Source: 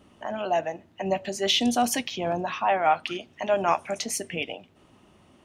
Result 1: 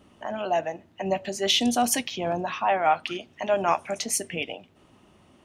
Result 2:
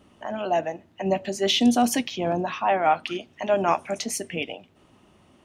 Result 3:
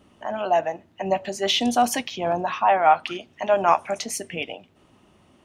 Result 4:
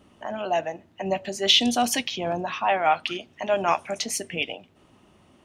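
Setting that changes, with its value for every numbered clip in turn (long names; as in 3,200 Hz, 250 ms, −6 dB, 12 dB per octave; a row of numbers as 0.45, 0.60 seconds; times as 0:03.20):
dynamic equaliser, frequency: 9,900, 260, 950, 3,500 Hertz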